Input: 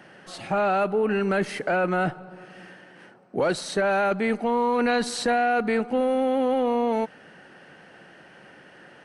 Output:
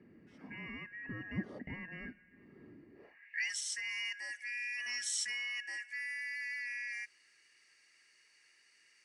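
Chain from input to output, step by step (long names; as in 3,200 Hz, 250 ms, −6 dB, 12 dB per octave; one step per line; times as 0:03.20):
band-splitting scrambler in four parts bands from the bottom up 2143
band-pass filter sweep 230 Hz → 7,300 Hz, 0:02.90–0:03.49
level +1 dB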